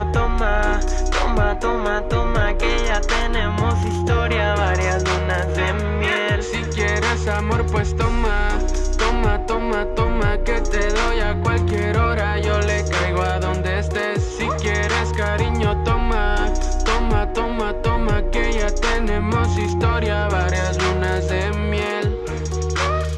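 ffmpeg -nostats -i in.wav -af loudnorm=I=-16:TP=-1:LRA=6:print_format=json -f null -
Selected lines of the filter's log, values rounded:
"input_i" : "-20.5",
"input_tp" : "-6.5",
"input_lra" : "1.3",
"input_thresh" : "-30.5",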